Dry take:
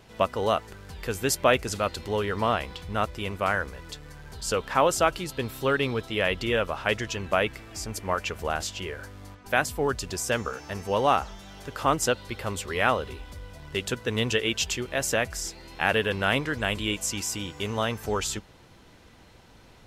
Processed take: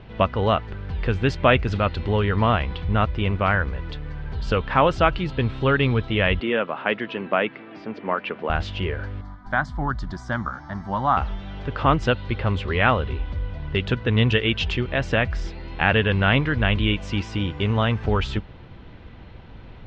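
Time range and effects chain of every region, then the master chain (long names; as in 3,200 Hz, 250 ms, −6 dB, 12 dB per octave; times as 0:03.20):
0:06.40–0:08.50: high-pass filter 210 Hz 24 dB per octave + high-frequency loss of the air 230 metres
0:09.21–0:11.17: parametric band 86 Hz −13.5 dB 0.74 octaves + phaser with its sweep stopped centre 1,100 Hz, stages 4
whole clip: dynamic equaliser 450 Hz, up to −4 dB, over −33 dBFS, Q 0.74; low-pass filter 3,500 Hz 24 dB per octave; low-shelf EQ 200 Hz +10.5 dB; level +5 dB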